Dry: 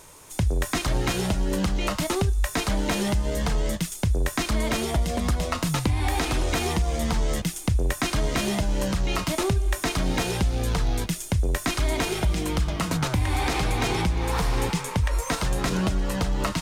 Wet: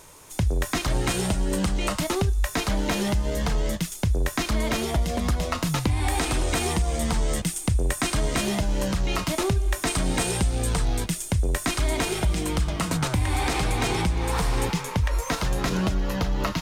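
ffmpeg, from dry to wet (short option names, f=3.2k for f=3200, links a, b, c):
-af "asetnsamples=n=441:p=0,asendcmd='0.9 equalizer g 7.5;2 equalizer g -2;5.91 equalizer g 7.5;8.42 equalizer g 0.5;9.87 equalizer g 12;10.85 equalizer g 5;14.65 equalizer g -5;15.94 equalizer g -14.5',equalizer=f=8.5k:t=o:w=0.32:g=-1.5"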